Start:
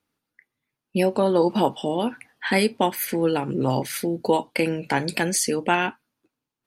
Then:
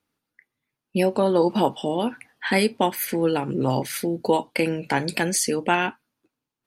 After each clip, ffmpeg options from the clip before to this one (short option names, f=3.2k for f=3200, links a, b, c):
-af anull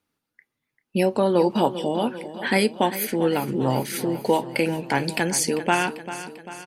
-af "aecho=1:1:394|788|1182|1576|1970|2364:0.224|0.128|0.0727|0.0415|0.0236|0.0135"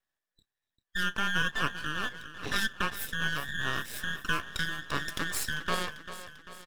-af "afftfilt=real='real(if(between(b,1,1012),(2*floor((b-1)/92)+1)*92-b,b),0)':imag='imag(if(between(b,1,1012),(2*floor((b-1)/92)+1)*92-b,b),0)*if(between(b,1,1012),-1,1)':win_size=2048:overlap=0.75,aeval=exprs='max(val(0),0)':c=same,volume=-6dB"